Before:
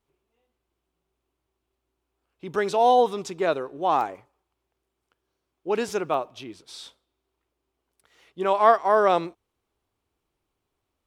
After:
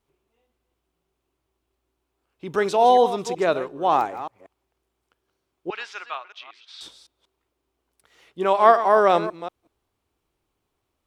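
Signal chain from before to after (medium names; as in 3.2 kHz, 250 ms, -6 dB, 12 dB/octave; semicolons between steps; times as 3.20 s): chunks repeated in reverse 186 ms, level -12.5 dB; 5.70–6.81 s: Butterworth band-pass 2.3 kHz, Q 0.82; trim +2.5 dB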